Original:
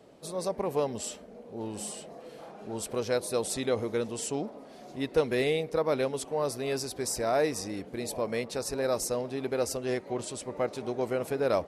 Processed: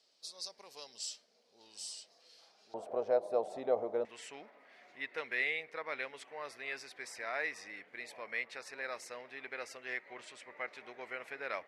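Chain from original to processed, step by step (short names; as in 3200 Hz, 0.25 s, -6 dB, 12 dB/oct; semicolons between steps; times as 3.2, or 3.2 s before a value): band-pass 4900 Hz, Q 3.6, from 2.74 s 680 Hz, from 4.05 s 2000 Hz; gain +5 dB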